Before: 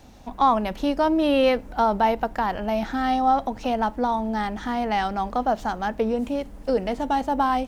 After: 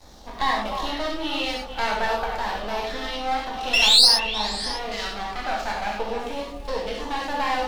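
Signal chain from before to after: painted sound rise, 3.73–4.08 s, 2.6–5.4 kHz -15 dBFS; in parallel at +2.5 dB: compression, threshold -30 dBFS, peak gain reduction 16 dB; on the sum: LFO notch saw down 0.53 Hz 370–2900 Hz; half-wave rectifier; ten-band graphic EQ 125 Hz -4 dB, 250 Hz -7 dB, 4 kHz +8 dB; on a send: repeats whose band climbs or falls 151 ms, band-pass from 370 Hz, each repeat 1.4 oct, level -3.5 dB; on the sum: gated-style reverb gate 130 ms flat, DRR -3 dB; trim -5 dB

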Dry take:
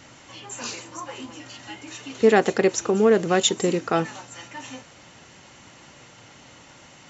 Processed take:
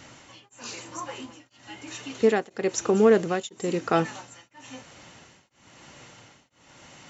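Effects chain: tremolo of two beating tones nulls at 1 Hz

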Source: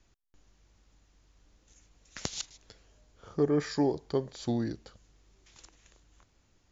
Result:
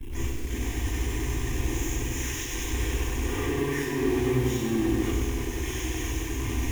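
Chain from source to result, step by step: one-bit comparator; Doppler pass-by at 2.01 s, 13 m/s, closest 9.8 m; waveshaping leveller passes 3; peak limiter -38 dBFS, peak gain reduction 6 dB; resonant low shelf 380 Hz +7.5 dB, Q 1.5; static phaser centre 900 Hz, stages 8; de-hum 53.6 Hz, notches 3; gate with hold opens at -32 dBFS; reverberation RT60 0.70 s, pre-delay 119 ms, DRR -15.5 dB; bit-crushed delay 97 ms, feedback 80%, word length 6-bit, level -6 dB; trim -6 dB

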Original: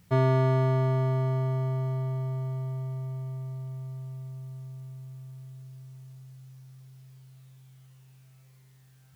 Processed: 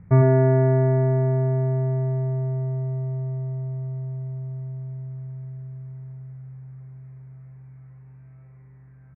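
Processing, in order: local Wiener filter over 9 samples; steep low-pass 2.3 kHz 72 dB/octave; bass shelf 290 Hz +10.5 dB; in parallel at -3 dB: compression, threshold -30 dBFS, peak gain reduction 16 dB; on the sum: delay 104 ms -5 dB

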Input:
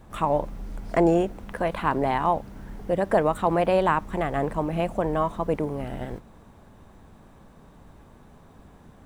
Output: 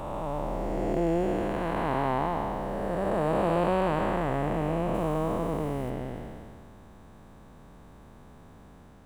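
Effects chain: spectral blur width 633 ms; 4.94–5.90 s: treble shelf 6.5 kHz +8 dB; trim +1.5 dB

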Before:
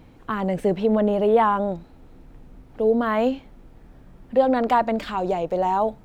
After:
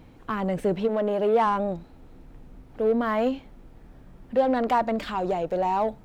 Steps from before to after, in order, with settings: 0.87–1.45 s: high-pass 370 Hz -> 150 Hz 12 dB/octave; in parallel at -4.5 dB: saturation -24.5 dBFS, distortion -7 dB; on the sum: trim -5 dB

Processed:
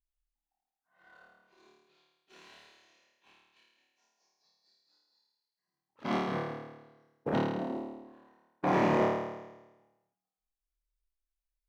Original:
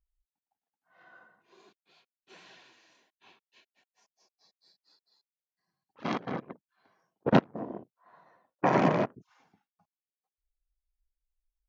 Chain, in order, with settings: peak limiter -15 dBFS, peak gain reduction 8.5 dB; waveshaping leveller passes 1; flutter echo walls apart 4.6 m, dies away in 1.1 s; trim -7.5 dB

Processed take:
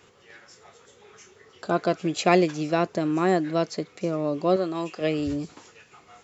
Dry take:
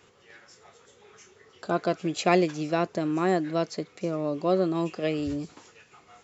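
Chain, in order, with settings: 4.56–5.01 s: bass shelf 350 Hz -10 dB; trim +2.5 dB

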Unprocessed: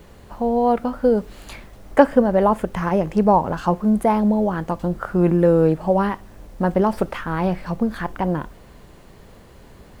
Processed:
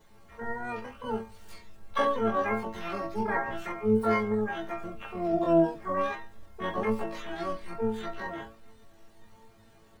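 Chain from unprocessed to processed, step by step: inharmonic resonator 110 Hz, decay 0.43 s, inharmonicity 0.002; chorus voices 4, 0.57 Hz, delay 22 ms, depth 1.8 ms; harmony voices -12 st -11 dB, +12 st 0 dB

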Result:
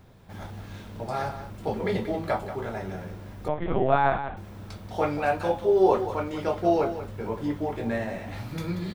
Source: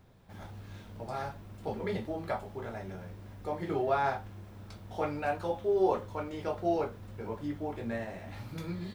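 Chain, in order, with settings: delay 184 ms -11 dB; 3.48–4.37 s: LPC vocoder at 8 kHz pitch kept; trim +7 dB

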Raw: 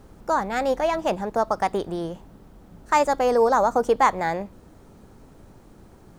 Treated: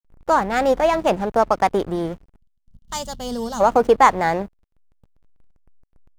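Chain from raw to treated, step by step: hysteresis with a dead band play -33 dBFS; time-frequency box 2.37–3.61 s, 250–2800 Hz -17 dB; trim +5.5 dB

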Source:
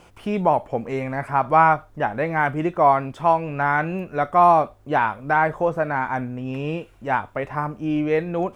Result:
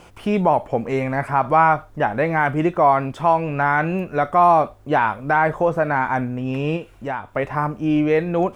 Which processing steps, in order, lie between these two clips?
in parallel at +2.5 dB: peak limiter -14.5 dBFS, peak gain reduction 11 dB; 6.76–7.34 s: on the sum: compression 2.5:1, threshold -23 dBFS, peak gain reduction 8 dB; trim -3 dB

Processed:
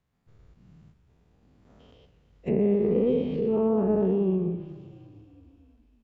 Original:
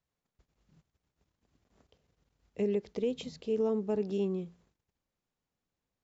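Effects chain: every event in the spectrogram widened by 240 ms; tone controls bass +6 dB, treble -8 dB; frequency-shifting echo 345 ms, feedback 61%, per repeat -30 Hz, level -22 dB; low-pass that closes with the level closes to 1.4 kHz, closed at -26 dBFS; modulated delay 122 ms, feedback 55%, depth 162 cents, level -15 dB; trim +2 dB

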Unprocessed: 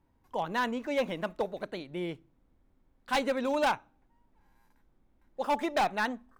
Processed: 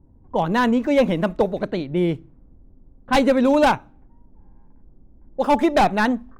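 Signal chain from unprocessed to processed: bass shelf 420 Hz +12 dB; level-controlled noise filter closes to 650 Hz, open at -25.5 dBFS; trim +7.5 dB

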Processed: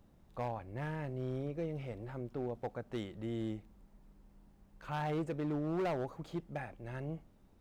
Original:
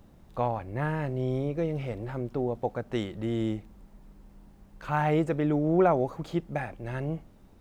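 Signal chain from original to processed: hard clipper -22 dBFS, distortion -13 dB; trim -9 dB

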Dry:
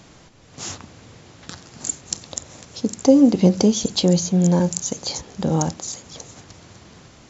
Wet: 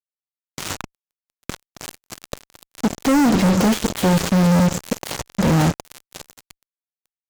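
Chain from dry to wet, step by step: dead-time distortion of 0.12 ms; dynamic bell 5.2 kHz, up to -4 dB, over -47 dBFS, Q 1.4; fuzz box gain 33 dB, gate -34 dBFS

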